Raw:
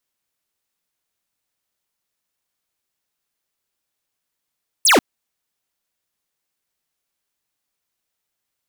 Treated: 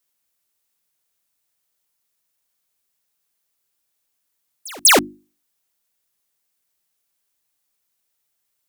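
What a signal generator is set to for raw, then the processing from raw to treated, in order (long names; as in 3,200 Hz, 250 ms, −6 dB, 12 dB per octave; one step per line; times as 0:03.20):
single falling chirp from 11,000 Hz, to 210 Hz, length 0.14 s square, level −12 dB
high-shelf EQ 6,600 Hz +8 dB
mains-hum notches 50/100/150/200/250/300/350 Hz
echo ahead of the sound 196 ms −23.5 dB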